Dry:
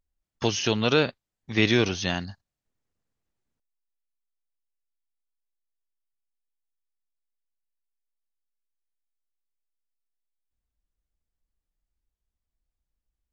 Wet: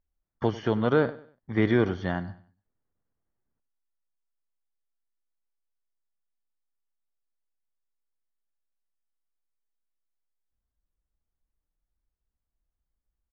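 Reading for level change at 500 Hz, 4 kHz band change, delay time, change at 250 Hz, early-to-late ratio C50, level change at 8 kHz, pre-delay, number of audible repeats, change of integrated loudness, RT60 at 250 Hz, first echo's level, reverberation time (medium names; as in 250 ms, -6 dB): 0.0 dB, -16.0 dB, 97 ms, 0.0 dB, no reverb, no reading, no reverb, 2, -2.0 dB, no reverb, -17.5 dB, no reverb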